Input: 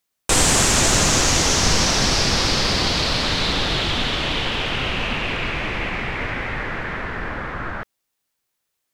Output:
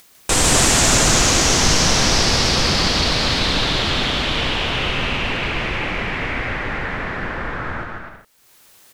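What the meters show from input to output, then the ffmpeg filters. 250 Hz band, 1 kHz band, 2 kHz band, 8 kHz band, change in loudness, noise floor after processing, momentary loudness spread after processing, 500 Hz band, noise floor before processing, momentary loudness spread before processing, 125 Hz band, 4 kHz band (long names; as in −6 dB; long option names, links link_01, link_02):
+2.5 dB, +2.0 dB, +2.0 dB, +2.0 dB, +2.0 dB, −51 dBFS, 13 LU, +2.0 dB, −77 dBFS, 13 LU, +2.0 dB, +2.0 dB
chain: -filter_complex "[0:a]acompressor=mode=upward:threshold=-30dB:ratio=2.5,asplit=2[link_01][link_02];[link_02]aecho=0:1:150|255|328.5|380|416:0.631|0.398|0.251|0.158|0.1[link_03];[link_01][link_03]amix=inputs=2:normalize=0"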